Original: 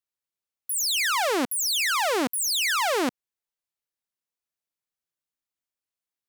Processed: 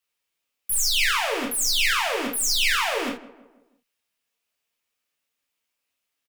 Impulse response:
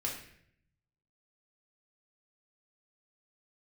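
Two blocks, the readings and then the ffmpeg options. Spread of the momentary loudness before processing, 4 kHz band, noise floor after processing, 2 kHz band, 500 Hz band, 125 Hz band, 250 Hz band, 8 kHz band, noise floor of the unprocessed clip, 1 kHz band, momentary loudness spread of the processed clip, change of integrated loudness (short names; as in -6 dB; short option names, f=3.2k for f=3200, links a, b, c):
6 LU, +3.0 dB, -81 dBFS, +2.5 dB, -2.0 dB, n/a, -3.5 dB, +1.5 dB, under -85 dBFS, -1.5 dB, 9 LU, +1.5 dB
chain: -filter_complex "[0:a]equalizer=f=2.7k:t=o:w=0.72:g=6.5,acrossover=split=240[a][b];[b]acontrast=78[c];[a][c]amix=inputs=2:normalize=0,alimiter=limit=-18.5dB:level=0:latency=1:release=296,asplit=2[d][e];[e]adelay=162,lowpass=f=1.9k:p=1,volume=-17dB,asplit=2[f][g];[g]adelay=162,lowpass=f=1.9k:p=1,volume=0.47,asplit=2[h][i];[i]adelay=162,lowpass=f=1.9k:p=1,volume=0.47,asplit=2[j][k];[k]adelay=162,lowpass=f=1.9k:p=1,volume=0.47[l];[d][f][h][j][l]amix=inputs=5:normalize=0,aeval=exprs='clip(val(0),-1,0.0376)':c=same,afreqshift=-13[m];[1:a]atrim=start_sample=2205,atrim=end_sample=3969[n];[m][n]afir=irnorm=-1:irlink=0,volume=1dB"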